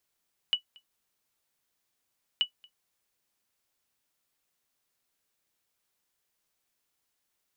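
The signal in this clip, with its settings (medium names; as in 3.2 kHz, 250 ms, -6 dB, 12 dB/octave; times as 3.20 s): sonar ping 2.95 kHz, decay 0.10 s, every 1.88 s, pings 2, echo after 0.23 s, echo -28 dB -16 dBFS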